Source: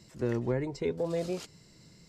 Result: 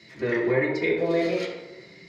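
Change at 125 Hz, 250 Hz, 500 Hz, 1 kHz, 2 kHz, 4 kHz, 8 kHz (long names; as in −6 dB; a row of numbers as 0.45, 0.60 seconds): +0.5 dB, +7.0 dB, +8.0 dB, +8.5 dB, +18.0 dB, +9.0 dB, can't be measured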